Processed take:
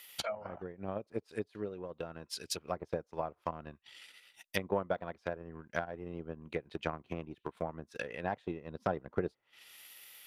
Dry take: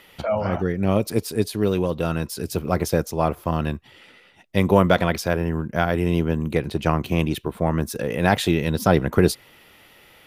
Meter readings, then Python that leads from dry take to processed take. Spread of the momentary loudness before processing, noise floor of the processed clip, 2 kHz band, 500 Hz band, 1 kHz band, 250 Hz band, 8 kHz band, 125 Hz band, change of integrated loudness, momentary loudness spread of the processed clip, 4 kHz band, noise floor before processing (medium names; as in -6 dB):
7 LU, -77 dBFS, -15.0 dB, -15.5 dB, -15.0 dB, -20.5 dB, -14.0 dB, -23.0 dB, -17.5 dB, 15 LU, -13.5 dB, -52 dBFS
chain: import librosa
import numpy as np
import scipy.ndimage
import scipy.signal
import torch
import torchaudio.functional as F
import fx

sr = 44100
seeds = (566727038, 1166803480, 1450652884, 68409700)

y = fx.env_lowpass_down(x, sr, base_hz=740.0, full_db=-18.5)
y = librosa.effects.preemphasis(y, coef=0.97, zi=[0.0])
y = fx.transient(y, sr, attack_db=8, sustain_db=-9)
y = y * 10.0 ** (3.5 / 20.0)